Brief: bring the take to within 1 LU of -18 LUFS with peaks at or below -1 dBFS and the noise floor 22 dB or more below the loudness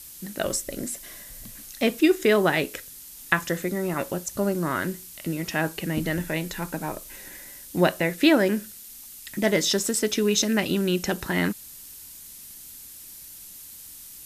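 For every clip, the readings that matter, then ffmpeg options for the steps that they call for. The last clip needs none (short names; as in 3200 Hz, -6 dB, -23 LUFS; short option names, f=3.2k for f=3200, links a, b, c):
noise floor -44 dBFS; noise floor target -47 dBFS; loudness -25.0 LUFS; peak -4.5 dBFS; loudness target -18.0 LUFS
-> -af "afftdn=nr=6:nf=-44"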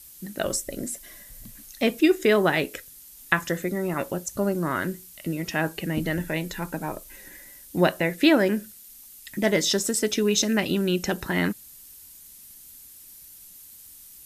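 noise floor -48 dBFS; loudness -25.0 LUFS; peak -4.5 dBFS; loudness target -18.0 LUFS
-> -af "volume=7dB,alimiter=limit=-1dB:level=0:latency=1"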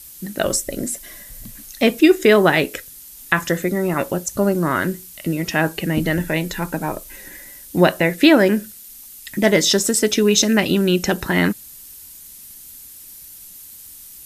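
loudness -18.0 LUFS; peak -1.0 dBFS; noise floor -41 dBFS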